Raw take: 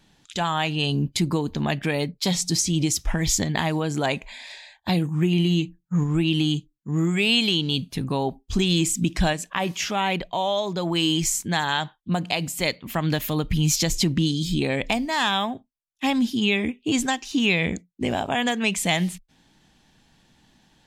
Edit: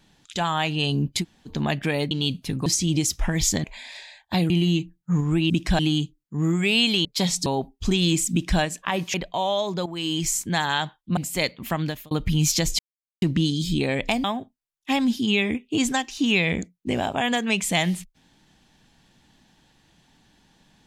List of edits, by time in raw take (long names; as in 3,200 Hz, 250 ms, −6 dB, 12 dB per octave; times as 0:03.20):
0:01.22–0:01.48: fill with room tone, crossfade 0.06 s
0:02.11–0:02.52: swap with 0:07.59–0:08.14
0:03.50–0:04.19: remove
0:05.05–0:05.33: remove
0:09.00–0:09.29: duplicate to 0:06.33
0:09.82–0:10.13: remove
0:10.85–0:11.36: fade in, from −12.5 dB
0:12.16–0:12.41: remove
0:12.96–0:13.35: fade out
0:14.03: splice in silence 0.43 s
0:15.05–0:15.38: remove